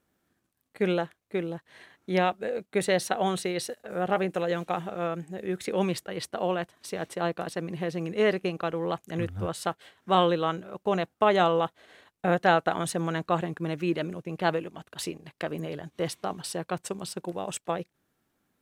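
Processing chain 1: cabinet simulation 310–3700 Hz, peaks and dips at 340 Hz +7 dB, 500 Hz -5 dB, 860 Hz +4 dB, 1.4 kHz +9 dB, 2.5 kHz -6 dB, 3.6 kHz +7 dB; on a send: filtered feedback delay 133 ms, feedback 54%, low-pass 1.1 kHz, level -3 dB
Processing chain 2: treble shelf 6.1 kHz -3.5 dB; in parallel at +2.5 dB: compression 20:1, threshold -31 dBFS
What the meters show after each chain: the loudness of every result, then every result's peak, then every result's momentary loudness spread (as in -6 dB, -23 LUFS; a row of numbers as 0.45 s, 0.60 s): -27.0 LUFS, -26.0 LUFS; -4.5 dBFS, -5.0 dBFS; 13 LU, 8 LU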